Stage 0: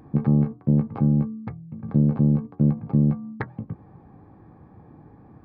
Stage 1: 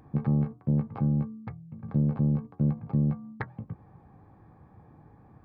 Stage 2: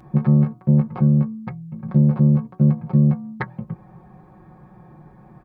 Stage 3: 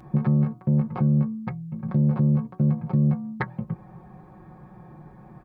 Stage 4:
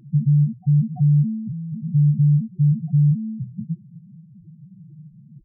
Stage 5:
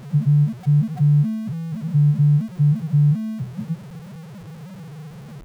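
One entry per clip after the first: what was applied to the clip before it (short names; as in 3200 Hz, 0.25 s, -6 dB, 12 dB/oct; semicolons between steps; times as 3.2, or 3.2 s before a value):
bell 290 Hz -6 dB 1.5 oct; gain -3 dB
comb 5.5 ms, depth 97%; gain +6 dB
limiter -13 dBFS, peak gain reduction 7 dB
loudest bins only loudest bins 2; gain +6.5 dB
zero-crossing step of -35.5 dBFS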